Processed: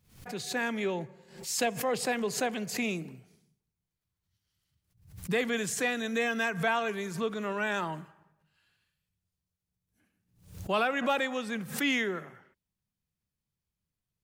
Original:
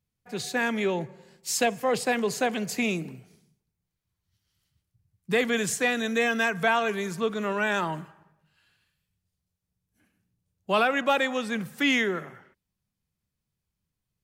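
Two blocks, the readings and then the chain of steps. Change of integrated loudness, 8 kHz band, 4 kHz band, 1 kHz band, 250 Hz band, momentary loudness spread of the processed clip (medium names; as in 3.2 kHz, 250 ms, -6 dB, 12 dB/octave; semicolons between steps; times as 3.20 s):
-4.5 dB, -3.0 dB, -4.5 dB, -5.0 dB, -4.5 dB, 11 LU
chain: swell ahead of each attack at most 110 dB/s; trim -5 dB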